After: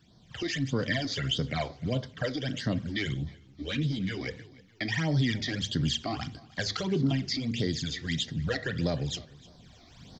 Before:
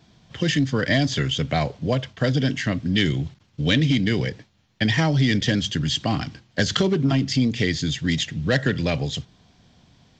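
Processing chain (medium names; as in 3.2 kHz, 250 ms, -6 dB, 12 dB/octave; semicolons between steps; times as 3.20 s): recorder AGC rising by 11 dB/s; bass shelf 470 Hz -3.5 dB; in parallel at -3 dB: peak limiter -16.5 dBFS, peak gain reduction 10 dB; on the sum: phase shifter stages 12, 1.6 Hz, lowest notch 150–2600 Hz; feedback delay 306 ms, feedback 34%, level -22 dB; on a send at -14 dB: reverberation RT60 0.45 s, pre-delay 3 ms; 3.14–4.20 s: on the sum: three-phase chorus; trim -8.5 dB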